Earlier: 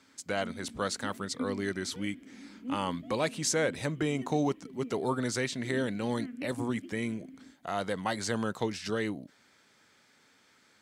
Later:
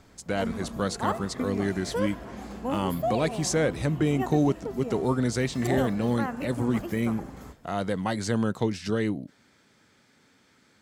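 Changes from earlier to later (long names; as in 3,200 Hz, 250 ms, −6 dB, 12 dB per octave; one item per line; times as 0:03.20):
speech: add low-shelf EQ 380 Hz +10 dB
background: remove formant filter i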